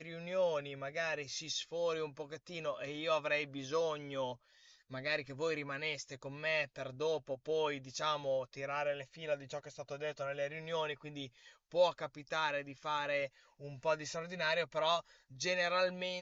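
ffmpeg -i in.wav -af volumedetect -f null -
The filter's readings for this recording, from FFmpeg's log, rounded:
mean_volume: -38.2 dB
max_volume: -19.5 dB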